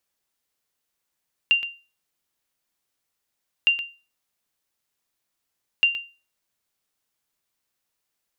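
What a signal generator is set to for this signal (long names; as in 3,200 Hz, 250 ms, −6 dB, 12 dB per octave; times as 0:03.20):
ping with an echo 2,780 Hz, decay 0.32 s, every 2.16 s, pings 3, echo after 0.12 s, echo −11 dB −10.5 dBFS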